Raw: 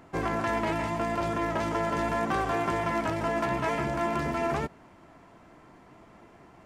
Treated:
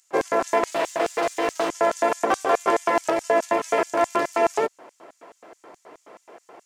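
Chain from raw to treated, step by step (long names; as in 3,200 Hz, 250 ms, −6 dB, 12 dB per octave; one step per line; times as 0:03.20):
0:00.71–0:01.69: lower of the sound and its delayed copy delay 6.2 ms
auto-filter high-pass square 4.7 Hz 470–6,700 Hz
level +7 dB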